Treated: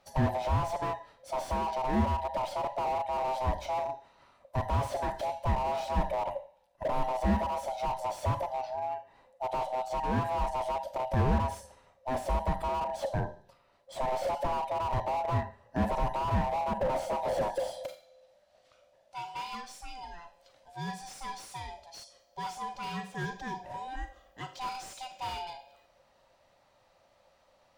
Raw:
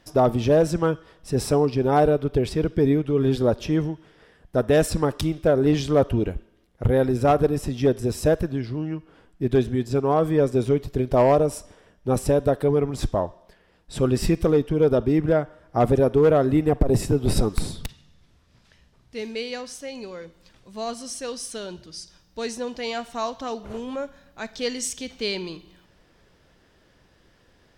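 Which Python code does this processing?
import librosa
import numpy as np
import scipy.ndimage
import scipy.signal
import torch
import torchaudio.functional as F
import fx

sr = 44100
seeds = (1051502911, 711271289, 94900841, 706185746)

y = fx.band_swap(x, sr, width_hz=500)
y = fx.rev_schroeder(y, sr, rt60_s=0.34, comb_ms=29, drr_db=9.5)
y = fx.slew_limit(y, sr, full_power_hz=67.0)
y = y * 10.0 ** (-7.5 / 20.0)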